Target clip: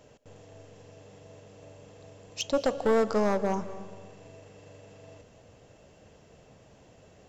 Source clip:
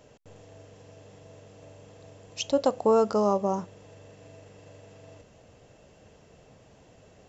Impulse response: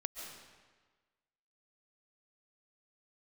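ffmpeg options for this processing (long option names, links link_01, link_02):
-filter_complex "[0:a]aeval=exprs='clip(val(0),-1,0.0891)':channel_layout=same,asplit=2[link_01][link_02];[1:a]atrim=start_sample=2205,asetrate=38808,aresample=44100[link_03];[link_02][link_03]afir=irnorm=-1:irlink=0,volume=-8dB[link_04];[link_01][link_04]amix=inputs=2:normalize=0,volume=-3dB"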